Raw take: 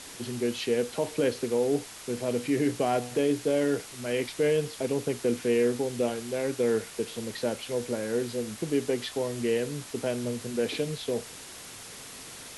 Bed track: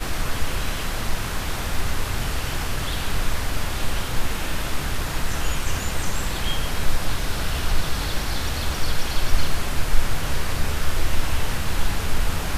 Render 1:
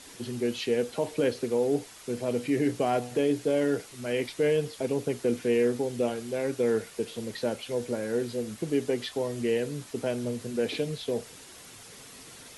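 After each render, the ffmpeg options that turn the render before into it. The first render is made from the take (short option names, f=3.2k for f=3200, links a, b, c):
-af "afftdn=nr=6:nf=-45"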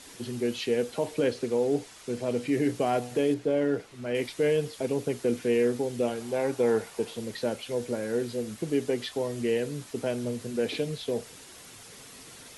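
-filter_complex "[0:a]asettb=1/sr,asplit=3[a][b][c];[a]atrim=end=1.194[d];[b]atrim=start=1.19:end=2.53,asetpts=PTS-STARTPTS,afade=t=in:d=0.004:c=qsin,afade=t=out:st=1.336:d=0.004:c=qsin,lowpass=10k[e];[c]atrim=start=2.526[f];[d][e]acrossfade=d=0.004:c1=hsin:c2=qsin[g];[g][f]acrossfade=d=0.004:c1=qsin:c2=hsin,asettb=1/sr,asplit=3[h][i][j];[h]atrim=end=3.344[k];[i]atrim=start=3.34:end=4.15,asetpts=PTS-STARTPTS,afade=t=in:d=0.004:c=qsin,afade=t=out:st=0.806:d=0.004:c=qsin,lowpass=f=2.3k:p=1[l];[j]atrim=start=4.146[m];[k][l]acrossfade=d=0.004:c1=hsin:c2=qsin[n];[n][m]acrossfade=d=0.004:c1=qsin:c2=hsin,asettb=1/sr,asplit=3[o][p][q];[o]atrim=end=6.204[r];[p]atrim=start=6.2:end=7.14,asetpts=PTS-STARTPTS,afade=t=in:d=0.004:c=qsin,afade=t=out:st=0.936:d=0.004:c=qsin,equalizer=f=860:w=1.9:g=9.5[s];[q]atrim=start=7.136[t];[r][s]acrossfade=d=0.004:c1=hsin:c2=qsin[u];[u][t]acrossfade=d=0.004:c1=qsin:c2=hsin"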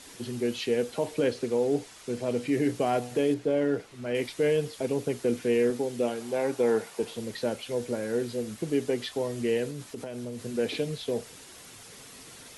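-filter_complex "[0:a]asettb=1/sr,asplit=3[a][b][c];[a]atrim=end=5.704[d];[b]atrim=start=5.7:end=7.03,asetpts=PTS-STARTPTS,afade=t=in:d=0.004:c=qsin,afade=t=out:st=1.326:d=0.004:c=qsin,highpass=140[e];[c]atrim=start=7.026[f];[d][e]acrossfade=d=0.004:c1=hsin:c2=qsin[g];[g][f]acrossfade=d=0.004:c1=qsin:c2=hsin,asettb=1/sr,asplit=3[h][i][j];[h]atrim=end=9.704[k];[i]atrim=start=9.7:end=10.4,asetpts=PTS-STARTPTS,afade=t=in:d=0.004:c=qsin,afade=t=out:st=0.696:d=0.004:c=qsin,acompressor=threshold=-32dB:ratio=12:attack=3.2:release=140:knee=1:detection=peak[l];[j]atrim=start=10.396[m];[k][l]acrossfade=d=0.004:c1=hsin:c2=qsin[n];[n][m]acrossfade=d=0.004:c1=qsin:c2=hsin"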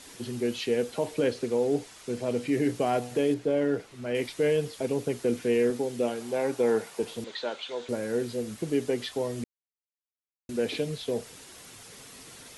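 -filter_complex "[0:a]asettb=1/sr,asplit=3[a][b][c];[a]atrim=end=7.244[d];[b]atrim=start=7.24:end=7.89,asetpts=PTS-STARTPTS,afade=t=in:d=0.004:c=qsin,afade=t=out:st=0.646:d=0.004:c=qsin,highpass=450,equalizer=f=520:t=q:w=4:g=-3,equalizer=f=970:t=q:w=4:g=4,equalizer=f=1.4k:t=q:w=4:g=4,equalizer=f=3.6k:t=q:w=4:g=9,equalizer=f=5.4k:t=q:w=4:g=-6,lowpass=f=6.4k:w=0.5412,lowpass=f=6.4k:w=1.3066[e];[c]atrim=start=7.886[f];[d][e]acrossfade=d=0.004:c1=hsin:c2=qsin[g];[g][f]acrossfade=d=0.004:c1=qsin:c2=hsin,asplit=3[h][i][j];[h]atrim=end=9.44,asetpts=PTS-STARTPTS,afade=t=out:st=9.436:d=0.004:c=hsin[k];[i]atrim=start=9.44:end=10.49,asetpts=PTS-STARTPTS,volume=0[l];[j]atrim=start=10.49,asetpts=PTS-STARTPTS,afade=t=in:d=0.004:c=hsin[m];[k][l][m]concat=n=3:v=0:a=1"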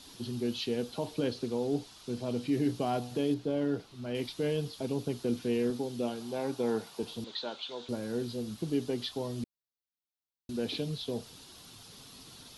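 -af "equalizer=f=500:t=o:w=1:g=-8,equalizer=f=2k:t=o:w=1:g=-12,equalizer=f=4k:t=o:w=1:g=6,equalizer=f=8k:t=o:w=1:g=-10"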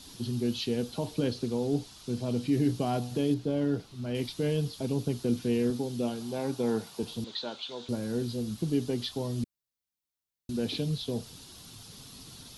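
-af "bass=f=250:g=7,treble=f=4k:g=4"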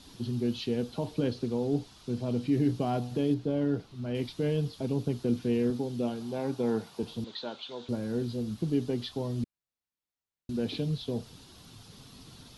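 -af "highshelf=f=4.7k:g=-10.5"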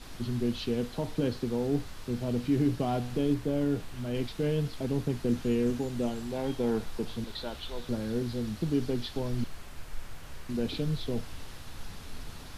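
-filter_complex "[1:a]volume=-20.5dB[a];[0:a][a]amix=inputs=2:normalize=0"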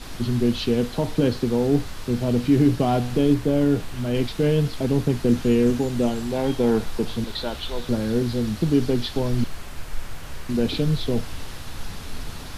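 -af "volume=9dB"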